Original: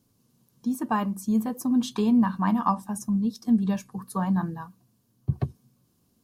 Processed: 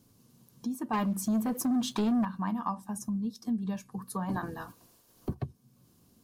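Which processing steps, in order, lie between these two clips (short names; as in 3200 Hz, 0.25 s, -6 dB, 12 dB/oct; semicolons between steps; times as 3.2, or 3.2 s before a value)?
4.28–5.33 spectral limiter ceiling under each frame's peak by 20 dB; compressor 2:1, threshold -45 dBFS, peak gain reduction 15.5 dB; 0.93–2.25 sample leveller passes 2; gain +4.5 dB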